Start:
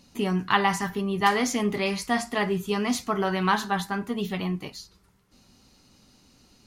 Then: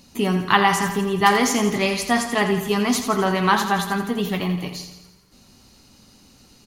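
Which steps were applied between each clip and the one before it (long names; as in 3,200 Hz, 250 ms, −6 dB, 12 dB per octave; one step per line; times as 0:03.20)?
high-shelf EQ 9,700 Hz +6 dB
on a send: repeating echo 84 ms, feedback 58%, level −9 dB
on the sum: level +5 dB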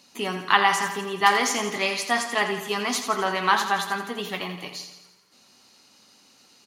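meter weighting curve A
level −2 dB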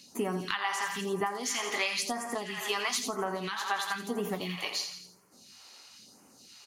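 downward compressor 12 to 1, threshold −29 dBFS, peak gain reduction 17.5 dB
all-pass phaser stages 2, 1 Hz, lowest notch 140–3,700 Hz
level +2.5 dB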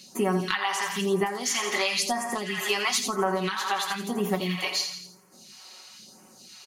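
comb filter 5.4 ms
level +4 dB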